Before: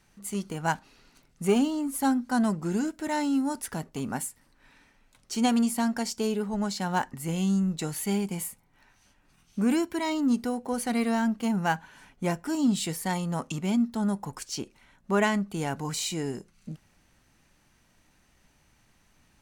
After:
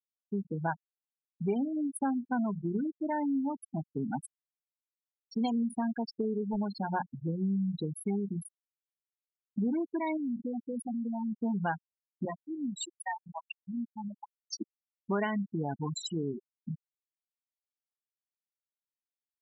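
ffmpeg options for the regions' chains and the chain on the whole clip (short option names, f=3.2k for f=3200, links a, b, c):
-filter_complex "[0:a]asettb=1/sr,asplit=3[a][b][c];[a]atrim=end=10.174[d];[b]atrim=start=10.17:end=11.34,asetpts=PTS-STARTPTS,afade=t=in:d=0.004:c=qsin,afade=t=out:st=1.166:d=0.004:c=qsin,acompressor=threshold=-29dB:ratio=4:attack=3.2:release=140:knee=1:detection=peak,volume=31dB,asoftclip=hard,volume=-31dB[e];[c]atrim=start=11.336[f];[d][e]acrossfade=d=0.004:c1=hsin:c2=qsin[g];[g][f]acrossfade=d=0.004:c1=qsin:c2=hsin,asettb=1/sr,asplit=3[h][i][j];[h]atrim=end=12.254[k];[i]atrim=start=12.25:end=14.61,asetpts=PTS-STARTPTS,afade=t=in:d=0.004:c=qsin,afade=t=out:st=2.356:d=0.004:c=qsin,aeval=exprs='val(0)+0.5*0.01*sgn(val(0))':c=same,highpass=f=1.1k:p=1,aecho=1:1:569:0.188,atrim=end_sample=104076[l];[j]atrim=start=14.606[m];[k][l]acrossfade=d=0.004:c1=hsin:c2=qsin[n];[n][m]acrossfade=d=0.004:c1=qsin:c2=hsin,bandreject=f=60:t=h:w=6,bandreject=f=120:t=h:w=6,bandreject=f=180:t=h:w=6,afftfilt=real='re*gte(hypot(re,im),0.0891)':imag='im*gte(hypot(re,im),0.0891)':win_size=1024:overlap=0.75,acompressor=threshold=-33dB:ratio=3,volume=2.5dB"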